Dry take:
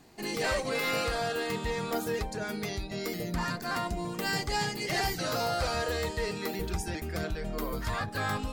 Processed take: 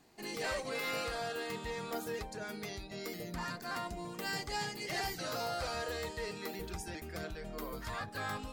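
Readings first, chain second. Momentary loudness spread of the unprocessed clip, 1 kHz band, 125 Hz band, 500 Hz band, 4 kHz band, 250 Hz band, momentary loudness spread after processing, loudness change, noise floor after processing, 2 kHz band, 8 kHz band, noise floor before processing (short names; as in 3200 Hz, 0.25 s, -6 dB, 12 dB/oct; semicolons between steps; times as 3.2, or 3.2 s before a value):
6 LU, -7.0 dB, -10.5 dB, -7.5 dB, -6.5 dB, -9.0 dB, 7 LU, -7.0 dB, -48 dBFS, -6.5 dB, -6.5 dB, -39 dBFS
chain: low shelf 220 Hz -5 dB; gain -6.5 dB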